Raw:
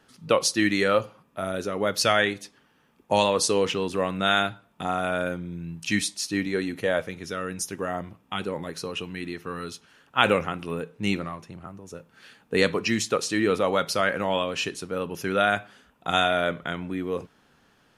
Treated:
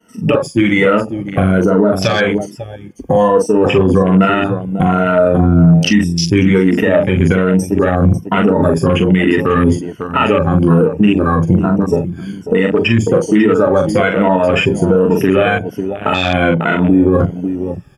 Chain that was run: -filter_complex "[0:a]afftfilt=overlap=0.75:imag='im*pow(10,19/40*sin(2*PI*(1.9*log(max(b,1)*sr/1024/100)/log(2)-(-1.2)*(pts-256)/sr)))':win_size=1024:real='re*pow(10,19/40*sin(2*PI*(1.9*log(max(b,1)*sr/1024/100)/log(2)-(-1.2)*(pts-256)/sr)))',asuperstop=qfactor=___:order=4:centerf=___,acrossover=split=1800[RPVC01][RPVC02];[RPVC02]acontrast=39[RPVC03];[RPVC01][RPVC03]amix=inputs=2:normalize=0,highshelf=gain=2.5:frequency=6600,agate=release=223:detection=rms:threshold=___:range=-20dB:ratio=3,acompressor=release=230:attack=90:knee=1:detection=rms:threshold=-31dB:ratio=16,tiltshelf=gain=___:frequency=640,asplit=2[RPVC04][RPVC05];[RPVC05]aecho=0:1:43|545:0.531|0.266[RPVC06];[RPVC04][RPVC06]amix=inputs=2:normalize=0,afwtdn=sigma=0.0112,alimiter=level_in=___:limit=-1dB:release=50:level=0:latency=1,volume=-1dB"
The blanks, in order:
3.2, 4000, -53dB, 6.5, 22.5dB